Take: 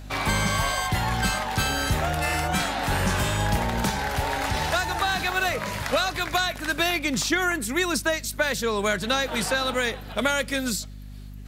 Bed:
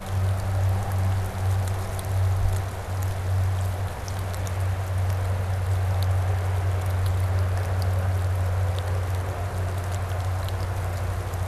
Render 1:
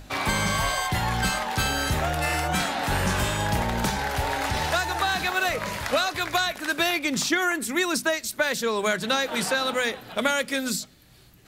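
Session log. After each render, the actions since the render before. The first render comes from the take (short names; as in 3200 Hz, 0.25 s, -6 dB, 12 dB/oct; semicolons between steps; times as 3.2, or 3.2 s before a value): notches 50/100/150/200/250 Hz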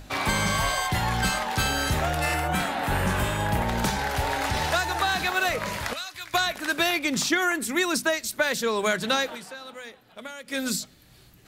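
2.34–3.67 bell 5500 Hz -8 dB 1.2 oct; 5.93–6.34 passive tone stack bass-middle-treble 5-5-5; 9.22–10.61 dip -15.5 dB, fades 0.17 s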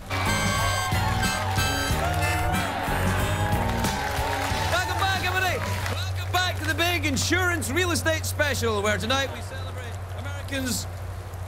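add bed -6.5 dB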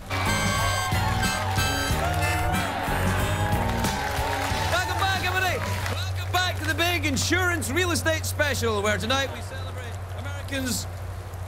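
nothing audible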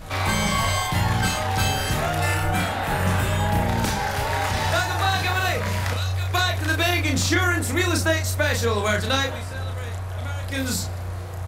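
doubler 34 ms -3.5 dB; shoebox room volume 2700 m³, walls furnished, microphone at 0.59 m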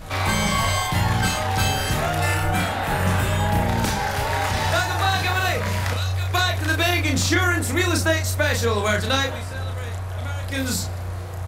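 gain +1 dB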